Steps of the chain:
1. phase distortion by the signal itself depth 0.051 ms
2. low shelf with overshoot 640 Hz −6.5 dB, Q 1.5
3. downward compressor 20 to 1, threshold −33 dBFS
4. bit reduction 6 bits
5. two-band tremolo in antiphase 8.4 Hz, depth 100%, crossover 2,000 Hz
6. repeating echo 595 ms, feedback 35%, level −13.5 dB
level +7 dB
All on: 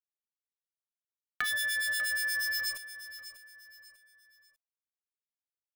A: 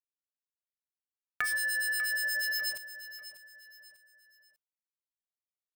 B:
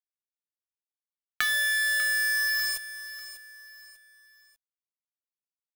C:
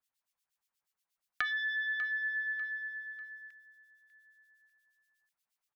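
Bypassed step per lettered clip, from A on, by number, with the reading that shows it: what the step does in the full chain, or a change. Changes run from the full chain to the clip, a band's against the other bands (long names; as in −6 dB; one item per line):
1, 500 Hz band +2.0 dB
5, change in momentary loudness spread +2 LU
4, change in crest factor +3.0 dB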